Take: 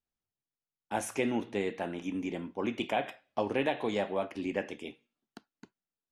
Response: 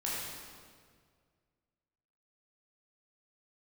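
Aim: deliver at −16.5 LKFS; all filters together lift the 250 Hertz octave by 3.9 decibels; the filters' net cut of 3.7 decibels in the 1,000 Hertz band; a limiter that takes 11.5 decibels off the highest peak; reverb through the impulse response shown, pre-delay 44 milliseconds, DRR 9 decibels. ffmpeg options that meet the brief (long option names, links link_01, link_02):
-filter_complex "[0:a]equalizer=frequency=250:width_type=o:gain=5,equalizer=frequency=1000:width_type=o:gain=-6,alimiter=level_in=3dB:limit=-24dB:level=0:latency=1,volume=-3dB,asplit=2[link_01][link_02];[1:a]atrim=start_sample=2205,adelay=44[link_03];[link_02][link_03]afir=irnorm=-1:irlink=0,volume=-14dB[link_04];[link_01][link_04]amix=inputs=2:normalize=0,volume=20.5dB"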